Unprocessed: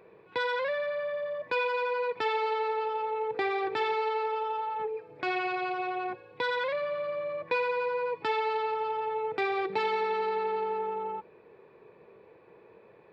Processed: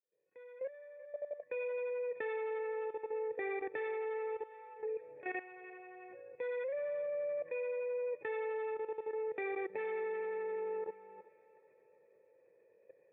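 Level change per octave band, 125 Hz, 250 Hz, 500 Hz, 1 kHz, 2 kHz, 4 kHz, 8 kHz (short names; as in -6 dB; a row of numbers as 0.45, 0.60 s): under -15 dB, -10.0 dB, -6.5 dB, -17.0 dB, -12.0 dB, under -25 dB, n/a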